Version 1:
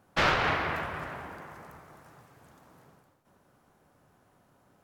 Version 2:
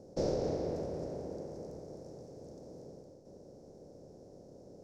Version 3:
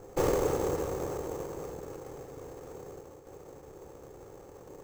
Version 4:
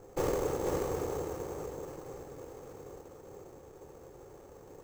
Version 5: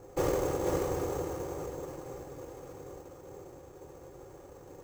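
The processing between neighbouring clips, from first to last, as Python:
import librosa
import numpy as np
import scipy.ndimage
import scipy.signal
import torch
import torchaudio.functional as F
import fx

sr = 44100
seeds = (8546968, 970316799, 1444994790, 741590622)

y1 = fx.bin_compress(x, sr, power=0.6)
y1 = fx.curve_eq(y1, sr, hz=(120.0, 520.0, 1200.0, 3100.0, 5500.0, 14000.0), db=(0, 8, -28, -28, 1, -17))
y1 = F.gain(torch.from_numpy(y1), -7.0).numpy()
y2 = fx.lower_of_two(y1, sr, delay_ms=2.3)
y2 = fx.sample_hold(y2, sr, seeds[0], rate_hz=7000.0, jitter_pct=0)
y2 = F.gain(torch.from_numpy(y2), 6.5).numpy()
y3 = y2 + 10.0 ** (-4.0 / 20.0) * np.pad(y2, (int(485 * sr / 1000.0), 0))[:len(y2)]
y3 = F.gain(torch.from_numpy(y3), -4.0).numpy()
y4 = fx.notch_comb(y3, sr, f0_hz=220.0)
y4 = F.gain(torch.from_numpy(y4), 3.0).numpy()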